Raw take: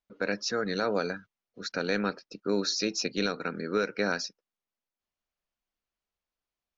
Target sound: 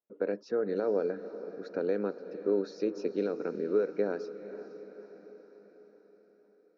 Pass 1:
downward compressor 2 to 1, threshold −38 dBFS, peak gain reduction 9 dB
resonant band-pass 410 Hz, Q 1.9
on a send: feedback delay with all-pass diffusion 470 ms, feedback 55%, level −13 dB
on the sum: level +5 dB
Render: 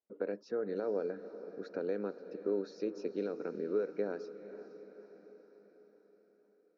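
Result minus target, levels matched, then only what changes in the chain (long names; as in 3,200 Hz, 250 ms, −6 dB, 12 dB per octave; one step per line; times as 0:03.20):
downward compressor: peak gain reduction +5.5 dB
change: downward compressor 2 to 1, threshold −27 dBFS, peak gain reduction 3.5 dB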